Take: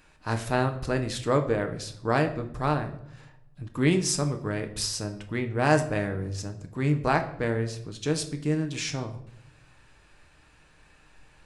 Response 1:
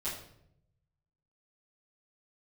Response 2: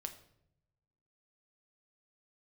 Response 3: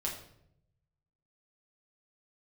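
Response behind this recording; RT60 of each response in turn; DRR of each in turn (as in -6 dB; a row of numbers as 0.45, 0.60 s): 2; 0.75, 0.75, 0.75 s; -13.0, 5.5, -3.5 dB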